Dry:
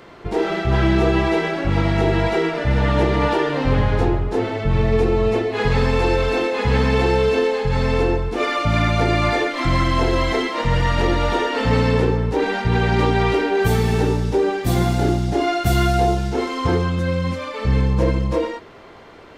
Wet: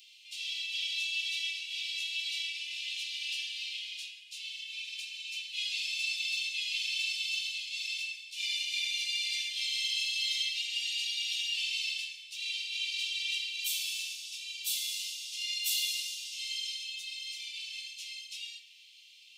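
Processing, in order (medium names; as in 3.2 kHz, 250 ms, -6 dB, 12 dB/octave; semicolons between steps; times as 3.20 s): steep high-pass 2.6 kHz 72 dB/octave; reverberation RT60 1.4 s, pre-delay 3 ms, DRR 1 dB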